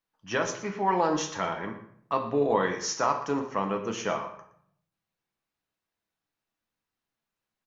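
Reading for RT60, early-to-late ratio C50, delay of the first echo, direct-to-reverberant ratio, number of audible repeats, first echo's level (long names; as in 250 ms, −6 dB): 0.60 s, 9.0 dB, 118 ms, 3.0 dB, 1, −16.0 dB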